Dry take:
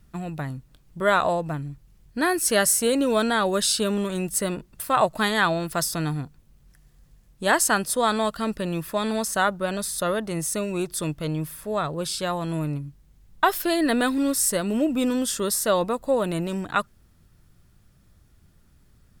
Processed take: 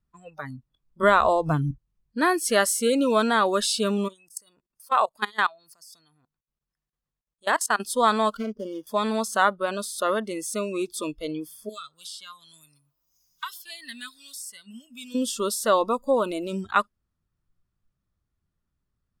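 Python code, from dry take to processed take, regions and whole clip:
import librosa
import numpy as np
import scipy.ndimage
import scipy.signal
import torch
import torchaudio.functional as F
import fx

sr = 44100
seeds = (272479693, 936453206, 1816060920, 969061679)

y = fx.chain(x, sr, fx.low_shelf(hz=280.0, db=4.0),
    fx.band_squash(depth_pct=70), at=(1.03, 1.71))
y = fx.chain(y, sr, fx.low_shelf(hz=200.0, db=-11.5),
    fx.level_steps(step_db=22), at=(4.08, 7.8))
y = fx.chain(y, sr, fx.median_filter(points=41),
    fx.low_shelf(hz=160.0, db=-9.5),
    fx.band_squash(depth_pct=100), at=(8.37, 8.87))
y = fx.chain(y, sr, fx.tone_stack(knobs='5-5-5'),
    fx.echo_wet_bandpass(ms=123, feedback_pct=59, hz=750.0, wet_db=-20.0),
    fx.band_squash(depth_pct=70), at=(11.69, 15.15))
y = fx.peak_eq(y, sr, hz=1100.0, db=5.5, octaves=0.45)
y = fx.noise_reduce_blind(y, sr, reduce_db=22)
y = fx.high_shelf(y, sr, hz=8700.0, db=-9.5)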